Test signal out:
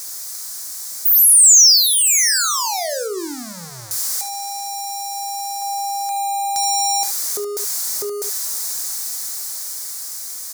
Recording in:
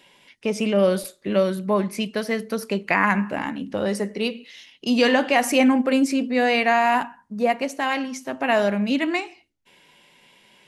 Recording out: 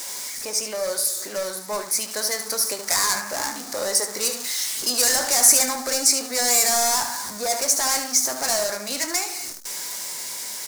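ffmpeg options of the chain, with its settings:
-filter_complex "[0:a]aeval=exprs='val(0)+0.5*0.0266*sgn(val(0))':c=same,acrossover=split=450[s0][s1];[s0]acompressor=threshold=0.0178:ratio=16[s2];[s2][s1]amix=inputs=2:normalize=0,asplit=2[s3][s4];[s4]highpass=f=720:p=1,volume=5.01,asoftclip=type=tanh:threshold=0.562[s5];[s3][s5]amix=inputs=2:normalize=0,lowpass=f=3000:p=1,volume=0.501,highshelf=f=7100:g=-4.5,bandreject=f=50:t=h:w=6,bandreject=f=100:t=h:w=6,bandreject=f=150:t=h:w=6,bandreject=f=200:t=h:w=6,dynaudnorm=f=670:g=7:m=3.55,asoftclip=type=hard:threshold=0.2,asplit=2[s6][s7];[s7]aecho=0:1:24|74:0.266|0.335[s8];[s6][s8]amix=inputs=2:normalize=0,aexciter=amount=12.6:drive=4.7:freq=4700,equalizer=f=2700:w=4.6:g=-7,volume=0.316"

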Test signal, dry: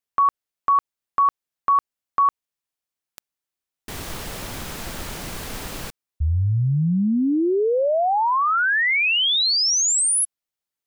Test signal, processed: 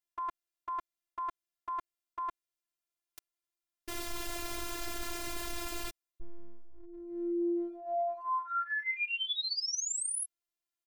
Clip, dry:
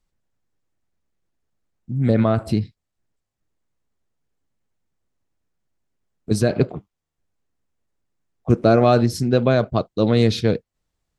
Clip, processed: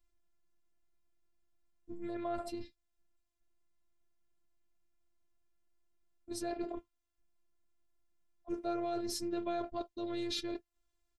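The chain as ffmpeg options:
-af "aecho=1:1:5:0.49,areverse,acompressor=threshold=0.0562:ratio=10:attack=1.5:release=67:knee=1:detection=rms,areverse,afftfilt=real='hypot(re,im)*cos(PI*b)':imag='0':win_size=512:overlap=0.75,volume=0.708"

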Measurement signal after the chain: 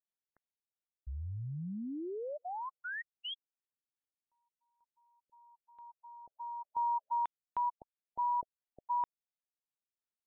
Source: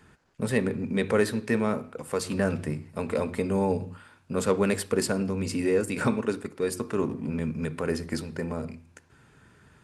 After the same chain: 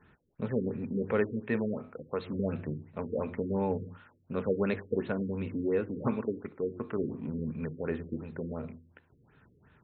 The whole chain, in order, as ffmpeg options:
-af "afftfilt=real='re*lt(b*sr/1024,500*pow(4300/500,0.5+0.5*sin(2*PI*2.8*pts/sr)))':imag='im*lt(b*sr/1024,500*pow(4300/500,0.5+0.5*sin(2*PI*2.8*pts/sr)))':win_size=1024:overlap=0.75,volume=0.562"

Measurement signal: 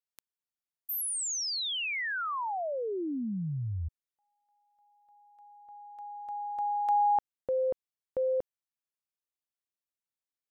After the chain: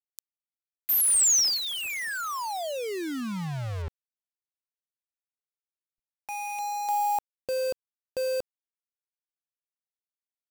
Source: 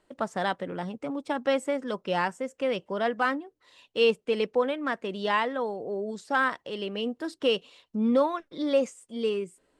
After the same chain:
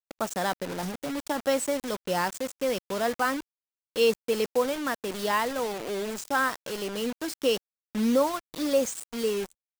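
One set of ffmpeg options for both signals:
-af "highshelf=f=4400:t=q:w=1.5:g=10,acrusher=bits=5:mix=0:aa=0.000001,anlmdn=0.1"

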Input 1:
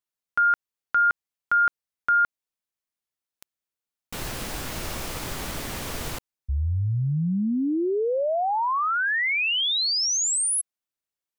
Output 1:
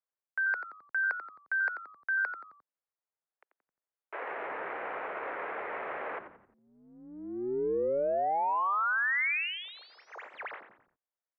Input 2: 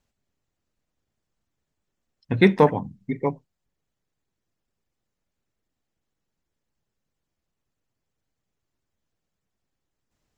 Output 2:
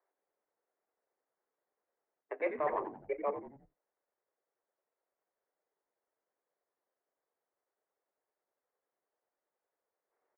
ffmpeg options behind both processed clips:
-filter_complex "[0:a]adynamicsmooth=sensitivity=5:basefreq=1600,aemphasis=mode=production:type=75fm,highpass=f=280:t=q:w=0.5412,highpass=f=280:t=q:w=1.307,lowpass=f=2000:t=q:w=0.5176,lowpass=f=2000:t=q:w=0.7071,lowpass=f=2000:t=q:w=1.932,afreqshift=150,areverse,acompressor=threshold=0.0398:ratio=12:attack=2.7:release=231:knee=6:detection=rms,areverse,asplit=5[s0][s1][s2][s3][s4];[s1]adelay=88,afreqshift=-100,volume=0.316[s5];[s2]adelay=176,afreqshift=-200,volume=0.133[s6];[s3]adelay=264,afreqshift=-300,volume=0.0556[s7];[s4]adelay=352,afreqshift=-400,volume=0.0234[s8];[s0][s5][s6][s7][s8]amix=inputs=5:normalize=0,volume=1.12"

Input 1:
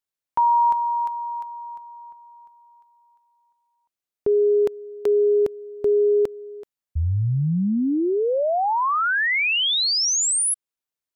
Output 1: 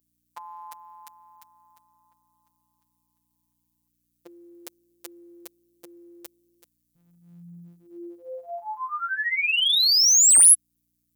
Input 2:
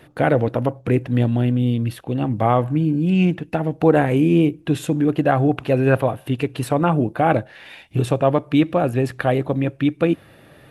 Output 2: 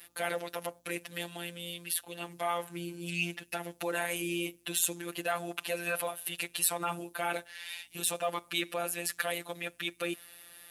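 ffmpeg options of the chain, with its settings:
-filter_complex "[0:a]highshelf=f=5500:g=4,afftfilt=real='hypot(re,im)*cos(PI*b)':imag='0':win_size=1024:overlap=0.75,aeval=exprs='val(0)+0.00251*(sin(2*PI*60*n/s)+sin(2*PI*2*60*n/s)/2+sin(2*PI*3*60*n/s)/3+sin(2*PI*4*60*n/s)/4+sin(2*PI*5*60*n/s)/5)':c=same,apsyclip=3.35,aderivative,asplit=2[s0][s1];[s1]aeval=exprs='0.141*(abs(mod(val(0)/0.141+3,4)-2)-1)':c=same,volume=0.447[s2];[s0][s2]amix=inputs=2:normalize=0,volume=0.631"

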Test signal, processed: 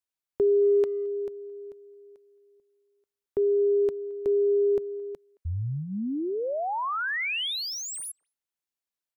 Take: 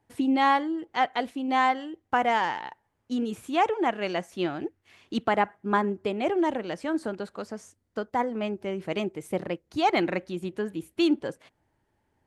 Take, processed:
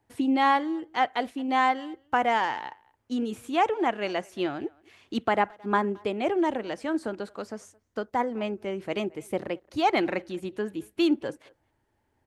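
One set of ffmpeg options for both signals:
-filter_complex "[0:a]equalizer=f=170:w=6.1:g=-8,acrossover=split=660|3600[s0][s1][s2];[s2]asoftclip=type=tanh:threshold=0.0178[s3];[s0][s1][s3]amix=inputs=3:normalize=0,asplit=2[s4][s5];[s5]adelay=220,highpass=300,lowpass=3400,asoftclip=type=hard:threshold=0.1,volume=0.0562[s6];[s4][s6]amix=inputs=2:normalize=0"

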